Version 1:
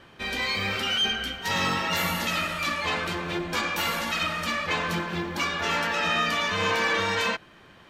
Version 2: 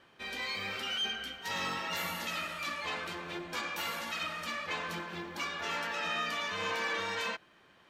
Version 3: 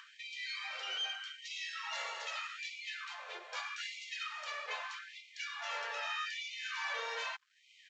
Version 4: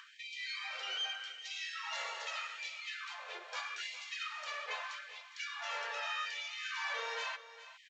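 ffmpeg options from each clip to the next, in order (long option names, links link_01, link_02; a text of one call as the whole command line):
ffmpeg -i in.wav -af "lowshelf=frequency=170:gain=-10,volume=-9dB" out.wav
ffmpeg -i in.wav -af "acompressor=mode=upward:threshold=-38dB:ratio=2.5,aresample=16000,aeval=exprs='sgn(val(0))*max(abs(val(0))-0.001,0)':channel_layout=same,aresample=44100,afftfilt=real='re*gte(b*sr/1024,380*pow(2000/380,0.5+0.5*sin(2*PI*0.81*pts/sr)))':imag='im*gte(b*sr/1024,380*pow(2000/380,0.5+0.5*sin(2*PI*0.81*pts/sr)))':win_size=1024:overlap=0.75,volume=-3.5dB" out.wav
ffmpeg -i in.wav -af "aecho=1:1:409:0.188" out.wav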